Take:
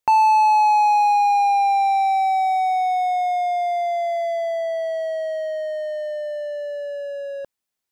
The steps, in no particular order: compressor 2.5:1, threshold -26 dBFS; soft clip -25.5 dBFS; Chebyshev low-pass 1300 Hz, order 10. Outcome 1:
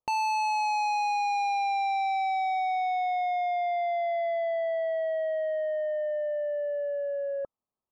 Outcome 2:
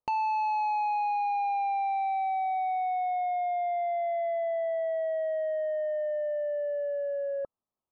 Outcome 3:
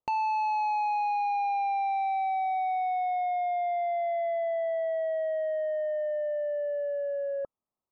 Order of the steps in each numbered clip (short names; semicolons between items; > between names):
Chebyshev low-pass > soft clip > compressor; compressor > Chebyshev low-pass > soft clip; Chebyshev low-pass > compressor > soft clip